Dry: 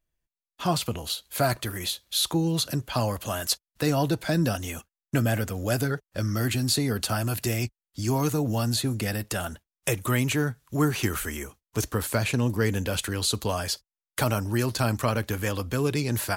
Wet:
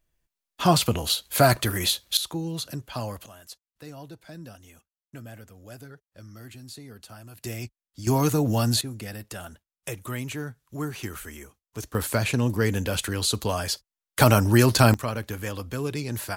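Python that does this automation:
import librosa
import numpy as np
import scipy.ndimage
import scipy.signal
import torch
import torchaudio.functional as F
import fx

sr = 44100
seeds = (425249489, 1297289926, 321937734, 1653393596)

y = fx.gain(x, sr, db=fx.steps((0.0, 6.0), (2.17, -6.0), (3.26, -18.0), (7.44, -7.0), (8.07, 3.0), (8.81, -8.0), (11.95, 1.0), (14.2, 8.0), (14.94, -4.0)))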